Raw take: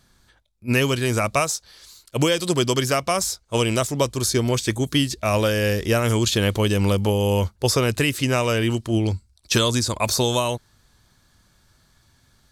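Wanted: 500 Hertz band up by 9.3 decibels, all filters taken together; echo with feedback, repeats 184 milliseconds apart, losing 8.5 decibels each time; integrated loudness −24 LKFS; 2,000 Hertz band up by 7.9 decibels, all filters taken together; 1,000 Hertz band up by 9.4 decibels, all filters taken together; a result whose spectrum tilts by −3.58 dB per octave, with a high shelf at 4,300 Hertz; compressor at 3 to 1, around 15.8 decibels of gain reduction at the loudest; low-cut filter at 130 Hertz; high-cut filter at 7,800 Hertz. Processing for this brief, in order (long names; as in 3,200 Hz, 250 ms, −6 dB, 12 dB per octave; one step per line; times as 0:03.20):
high-pass filter 130 Hz
low-pass filter 7,800 Hz
parametric band 500 Hz +9 dB
parametric band 1,000 Hz +7 dB
parametric band 2,000 Hz +6.5 dB
high-shelf EQ 4,300 Hz +6 dB
downward compressor 3 to 1, threshold −30 dBFS
repeating echo 184 ms, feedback 38%, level −8.5 dB
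level +4.5 dB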